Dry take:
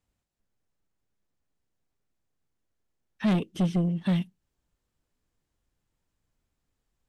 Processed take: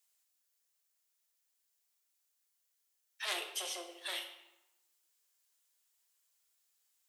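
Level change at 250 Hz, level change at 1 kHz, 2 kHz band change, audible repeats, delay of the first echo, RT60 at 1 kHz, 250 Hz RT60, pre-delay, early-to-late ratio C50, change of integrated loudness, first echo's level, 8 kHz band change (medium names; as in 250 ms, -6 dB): -32.5 dB, -6.5 dB, 0.0 dB, no echo, no echo, 1.0 s, 1.5 s, 8 ms, 8.0 dB, -12.0 dB, no echo, no reading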